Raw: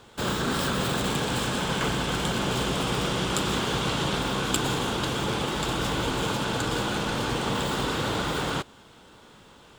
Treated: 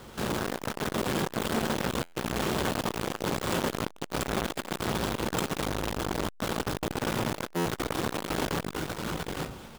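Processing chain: square wave that keeps the level; in parallel at +1 dB: compression, threshold -35 dBFS, peak gain reduction 17 dB; on the sum: multi-tap echo 67/135/140/157/524/843 ms -16.5/-14.5/-17.5/-7.5/-14.5/-3 dB; on a send at -7 dB: reverberation RT60 0.40 s, pre-delay 5 ms; on the sum: buffer glitch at 2.01/6.28/7.54 s, samples 512, times 9; transformer saturation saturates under 1.3 kHz; trim -7 dB

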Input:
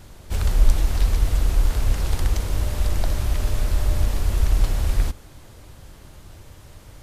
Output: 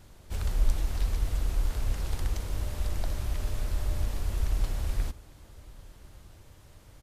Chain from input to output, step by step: delay 1153 ms -23.5 dB; trim -9 dB

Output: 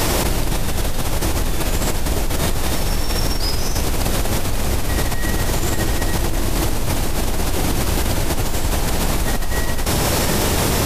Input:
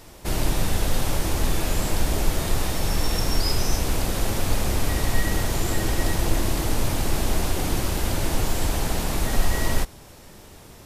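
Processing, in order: level flattener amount 100%; trim -5.5 dB

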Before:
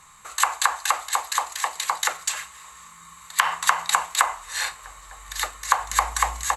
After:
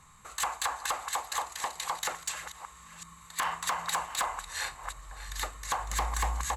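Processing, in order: chunks repeated in reverse 379 ms, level -13 dB; bass shelf 430 Hz +12 dB; hard clipper -15.5 dBFS, distortion -7 dB; trim -8.5 dB

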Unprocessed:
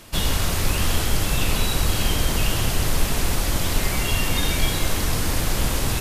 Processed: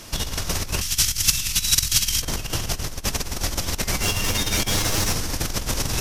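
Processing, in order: 4.02–5.14 s: comb filter that takes the minimum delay 9.8 ms; peaking EQ 5.7 kHz +9 dB 0.49 oct; compressor with a negative ratio -23 dBFS, ratio -0.5; 0.81–2.22 s: FFT filter 140 Hz 0 dB, 540 Hz -16 dB, 2.2 kHz +5 dB, 6.1 kHz +11 dB; trim -1 dB

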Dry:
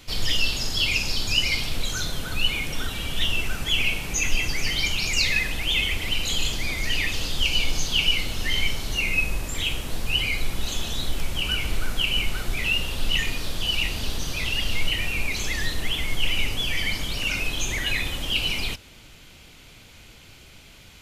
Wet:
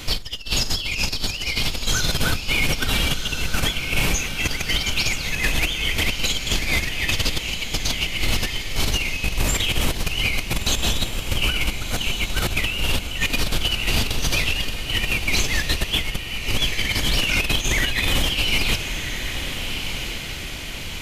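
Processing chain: compressor with a negative ratio -28 dBFS, ratio -0.5; peak limiter -17.5 dBFS, peak gain reduction 6 dB; on a send: echo that smears into a reverb 1357 ms, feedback 48%, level -7.5 dB; on the sum: trim +7.5 dB

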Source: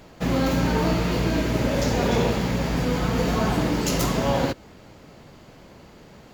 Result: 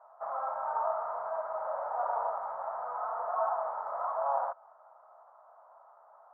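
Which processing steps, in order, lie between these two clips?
tracing distortion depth 0.44 ms; elliptic band-pass 650–1300 Hz, stop band 50 dB; trim -1 dB

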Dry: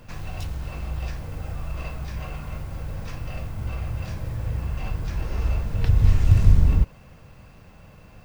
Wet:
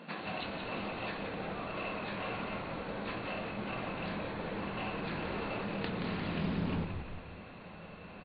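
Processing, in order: FFT band-pass 160–4500 Hz; in parallel at -2.5 dB: compressor with a negative ratio -41 dBFS; on the sum: frequency-shifting echo 176 ms, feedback 53%, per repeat -86 Hz, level -6 dB; loudspeaker Doppler distortion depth 0.2 ms; trim -3.5 dB

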